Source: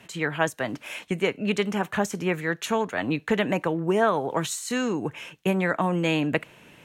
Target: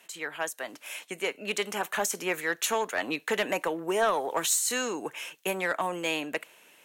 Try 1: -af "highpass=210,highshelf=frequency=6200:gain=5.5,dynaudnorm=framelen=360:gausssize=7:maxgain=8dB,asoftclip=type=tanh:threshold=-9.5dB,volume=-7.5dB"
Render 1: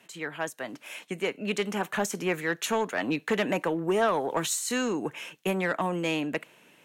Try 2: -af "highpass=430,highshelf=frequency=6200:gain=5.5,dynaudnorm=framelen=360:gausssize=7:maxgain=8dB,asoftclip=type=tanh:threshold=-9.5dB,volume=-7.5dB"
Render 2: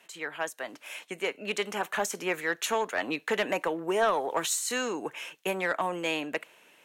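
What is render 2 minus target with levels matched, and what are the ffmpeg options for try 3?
8,000 Hz band −3.5 dB
-af "highpass=430,highshelf=frequency=6200:gain=14,dynaudnorm=framelen=360:gausssize=7:maxgain=8dB,asoftclip=type=tanh:threshold=-9.5dB,volume=-7.5dB"

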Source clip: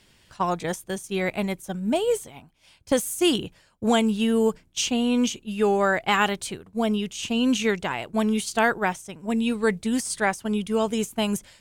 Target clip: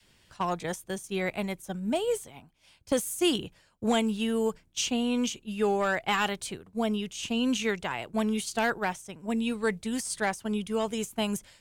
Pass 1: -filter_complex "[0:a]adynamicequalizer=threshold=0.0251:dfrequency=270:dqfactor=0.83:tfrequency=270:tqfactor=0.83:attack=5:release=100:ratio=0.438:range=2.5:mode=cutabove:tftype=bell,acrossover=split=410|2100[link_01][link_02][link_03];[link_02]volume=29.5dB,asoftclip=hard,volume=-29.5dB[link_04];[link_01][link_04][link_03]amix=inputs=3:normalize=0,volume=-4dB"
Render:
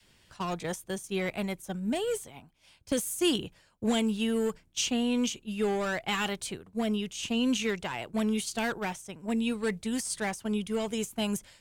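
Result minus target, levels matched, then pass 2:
gain into a clipping stage and back: distortion +9 dB
-filter_complex "[0:a]adynamicequalizer=threshold=0.0251:dfrequency=270:dqfactor=0.83:tfrequency=270:tqfactor=0.83:attack=5:release=100:ratio=0.438:range=2.5:mode=cutabove:tftype=bell,acrossover=split=410|2100[link_01][link_02][link_03];[link_02]volume=19.5dB,asoftclip=hard,volume=-19.5dB[link_04];[link_01][link_04][link_03]amix=inputs=3:normalize=0,volume=-4dB"

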